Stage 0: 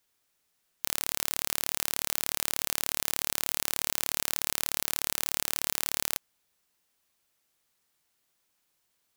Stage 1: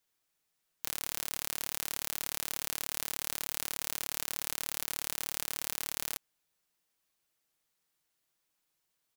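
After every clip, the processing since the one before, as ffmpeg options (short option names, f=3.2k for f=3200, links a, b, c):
-af "aecho=1:1:6.3:0.33,volume=-6dB"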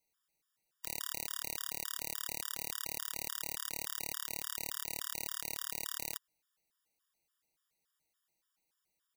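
-af "afftfilt=real='re*gt(sin(2*PI*3.5*pts/sr)*(1-2*mod(floor(b*sr/1024/950),2)),0)':imag='im*gt(sin(2*PI*3.5*pts/sr)*(1-2*mod(floor(b*sr/1024/950),2)),0)':win_size=1024:overlap=0.75"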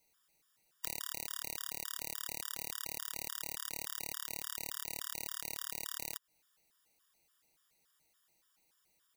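-af "acompressor=threshold=-42dB:ratio=10,volume=8.5dB"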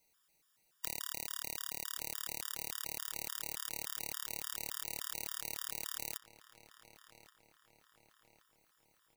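-filter_complex "[0:a]asplit=2[a][b];[b]adelay=1126,lowpass=f=2.7k:p=1,volume=-13dB,asplit=2[c][d];[d]adelay=1126,lowpass=f=2.7k:p=1,volume=0.52,asplit=2[e][f];[f]adelay=1126,lowpass=f=2.7k:p=1,volume=0.52,asplit=2[g][h];[h]adelay=1126,lowpass=f=2.7k:p=1,volume=0.52,asplit=2[i][j];[j]adelay=1126,lowpass=f=2.7k:p=1,volume=0.52[k];[a][c][e][g][i][k]amix=inputs=6:normalize=0"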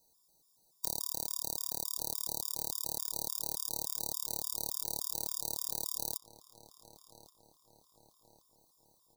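-af "asuperstop=centerf=2000:order=12:qfactor=0.71,volume=5dB"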